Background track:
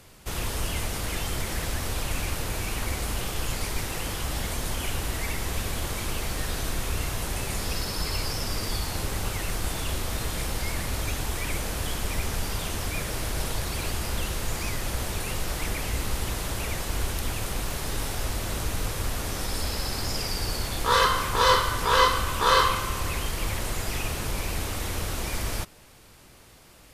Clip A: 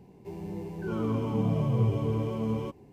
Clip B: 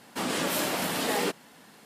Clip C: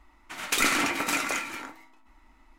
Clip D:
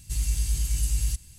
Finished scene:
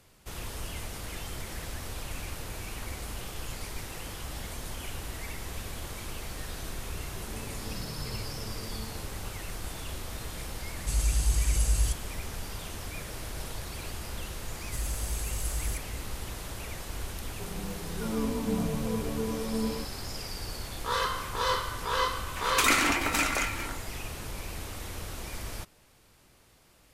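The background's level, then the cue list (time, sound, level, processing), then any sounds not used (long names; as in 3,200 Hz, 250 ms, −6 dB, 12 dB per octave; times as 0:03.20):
background track −8.5 dB
0:06.32: mix in A −15.5 dB
0:10.77: mix in D −0.5 dB + Butterworth low-pass 12,000 Hz
0:14.62: mix in D −8.5 dB + high-shelf EQ 8,400 Hz +8.5 dB
0:17.13: mix in A −4.5 dB + comb filter 4.2 ms, depth 82%
0:22.06: mix in C
not used: B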